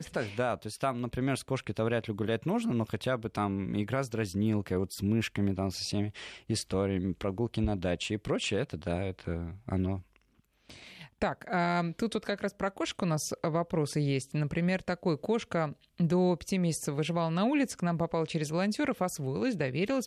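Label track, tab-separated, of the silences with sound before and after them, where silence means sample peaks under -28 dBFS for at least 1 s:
9.960000	11.220000	silence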